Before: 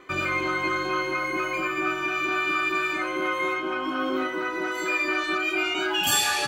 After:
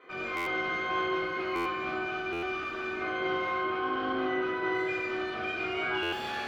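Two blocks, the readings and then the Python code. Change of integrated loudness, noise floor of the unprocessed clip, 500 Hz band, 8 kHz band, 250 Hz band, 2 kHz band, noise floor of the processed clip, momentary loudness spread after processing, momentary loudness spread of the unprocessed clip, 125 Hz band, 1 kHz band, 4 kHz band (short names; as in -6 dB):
-6.0 dB, -30 dBFS, -2.5 dB, under -25 dB, -4.5 dB, -7.0 dB, -36 dBFS, 3 LU, 4 LU, -5.5 dB, -4.5 dB, -10.5 dB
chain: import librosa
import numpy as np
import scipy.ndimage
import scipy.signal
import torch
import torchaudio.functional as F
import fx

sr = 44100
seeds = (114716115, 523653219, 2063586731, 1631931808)

y = scipy.signal.sosfilt(scipy.signal.butter(2, 290.0, 'highpass', fs=sr, output='sos'), x)
y = fx.high_shelf(y, sr, hz=5000.0, db=11.5)
y = 10.0 ** (-26.5 / 20.0) * np.tanh(y / 10.0 ** (-26.5 / 20.0))
y = fx.air_absorb(y, sr, metres=330.0)
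y = fx.rev_fdn(y, sr, rt60_s=1.1, lf_ratio=1.6, hf_ratio=0.65, size_ms=13.0, drr_db=-8.0)
y = fx.buffer_glitch(y, sr, at_s=(0.36, 1.55, 2.32, 6.02), block=512, repeats=8)
y = y * 10.0 ** (-7.0 / 20.0)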